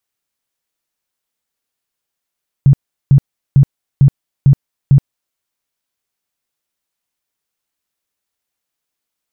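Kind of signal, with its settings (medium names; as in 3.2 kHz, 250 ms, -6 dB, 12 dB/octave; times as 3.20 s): tone bursts 138 Hz, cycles 10, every 0.45 s, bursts 6, -3.5 dBFS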